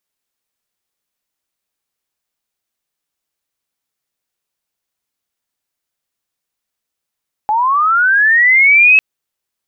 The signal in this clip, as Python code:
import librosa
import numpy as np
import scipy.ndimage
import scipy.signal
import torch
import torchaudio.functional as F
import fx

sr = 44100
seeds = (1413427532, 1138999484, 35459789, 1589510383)

y = fx.chirp(sr, length_s=1.5, from_hz=830.0, to_hz=2600.0, law='linear', from_db=-11.0, to_db=-4.0)